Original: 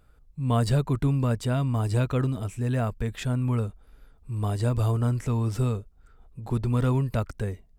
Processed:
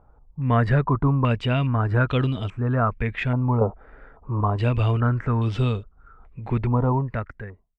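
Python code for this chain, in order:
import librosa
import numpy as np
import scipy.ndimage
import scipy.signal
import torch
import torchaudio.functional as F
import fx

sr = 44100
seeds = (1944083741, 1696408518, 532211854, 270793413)

y = fx.fade_out_tail(x, sr, length_s=1.12)
y = fx.peak_eq(y, sr, hz=590.0, db=12.5, octaves=2.4, at=(3.61, 4.41))
y = fx.filter_held_lowpass(y, sr, hz=2.4, low_hz=890.0, high_hz=3200.0)
y = F.gain(torch.from_numpy(y), 3.0).numpy()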